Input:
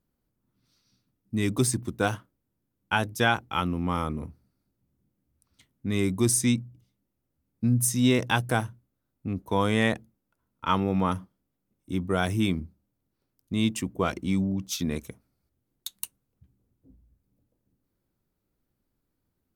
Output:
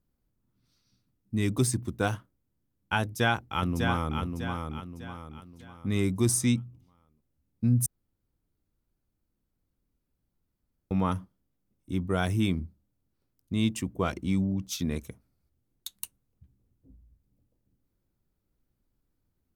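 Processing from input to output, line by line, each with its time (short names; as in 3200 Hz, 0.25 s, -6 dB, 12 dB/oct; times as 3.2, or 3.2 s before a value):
3.02–4.2 echo throw 0.6 s, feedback 40%, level -5 dB
7.86–10.91 room tone
whole clip: low shelf 94 Hz +9 dB; gain -3 dB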